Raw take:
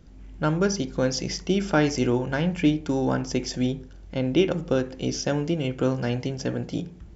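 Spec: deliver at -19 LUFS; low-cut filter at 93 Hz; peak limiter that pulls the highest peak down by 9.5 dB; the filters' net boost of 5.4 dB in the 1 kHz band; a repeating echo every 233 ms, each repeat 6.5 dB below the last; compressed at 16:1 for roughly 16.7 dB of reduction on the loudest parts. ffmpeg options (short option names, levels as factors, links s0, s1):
-af "highpass=93,equalizer=f=1000:t=o:g=7.5,acompressor=threshold=0.0282:ratio=16,alimiter=level_in=1.41:limit=0.0631:level=0:latency=1,volume=0.708,aecho=1:1:233|466|699|932|1165|1398:0.473|0.222|0.105|0.0491|0.0231|0.0109,volume=8.91"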